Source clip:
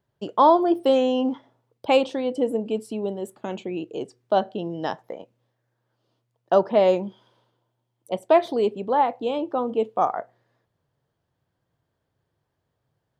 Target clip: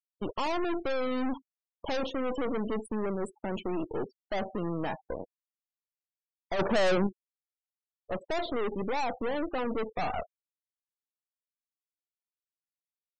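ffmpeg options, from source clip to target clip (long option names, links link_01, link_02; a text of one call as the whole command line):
ffmpeg -i in.wav -filter_complex "[0:a]aeval=exprs='(tanh(56.2*val(0)+0.75)-tanh(0.75))/56.2':channel_layout=same,asettb=1/sr,asplit=3[link_01][link_02][link_03];[link_01]atrim=end=6.594[link_04];[link_02]atrim=start=6.59:end=7.07,asetpts=PTS-STARTPTS,afade=type=in:duration=0.004:curve=qsin,afade=type=out:start_time=0.476:duration=0.004:curve=qsin,acontrast=39[link_05];[link_03]atrim=start=7.066[link_06];[link_04][link_05]acrossfade=duration=0.004:curve1=hsin:curve2=qsin[link_07];[link_07][link_06]acrossfade=duration=0.004:curve1=qsin:curve2=hsin,afftfilt=real='re*gte(hypot(re,im),0.00794)':imag='im*gte(hypot(re,im),0.00794)':win_size=1024:overlap=0.75,volume=5.5dB" out.wav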